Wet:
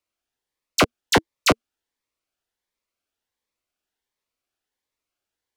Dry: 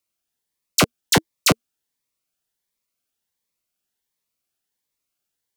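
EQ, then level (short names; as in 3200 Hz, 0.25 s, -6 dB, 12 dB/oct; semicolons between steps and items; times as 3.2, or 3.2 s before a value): LPF 2600 Hz 6 dB/oct; bell 160 Hz -10 dB 0.86 oct; +2.5 dB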